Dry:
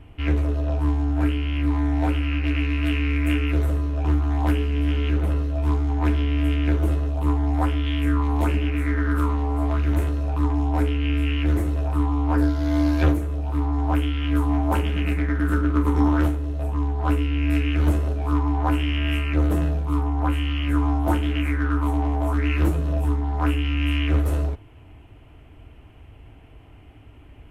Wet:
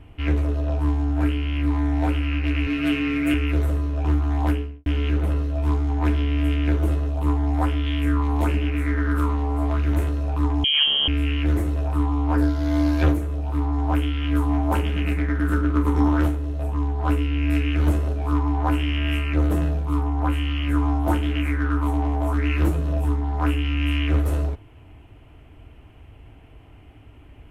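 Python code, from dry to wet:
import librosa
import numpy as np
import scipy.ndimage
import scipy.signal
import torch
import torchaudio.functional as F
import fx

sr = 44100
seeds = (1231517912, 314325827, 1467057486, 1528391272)

y = fx.comb(x, sr, ms=7.4, depth=0.87, at=(2.66, 3.34))
y = fx.studio_fade_out(y, sr, start_s=4.43, length_s=0.43)
y = fx.freq_invert(y, sr, carrier_hz=3200, at=(10.64, 11.08))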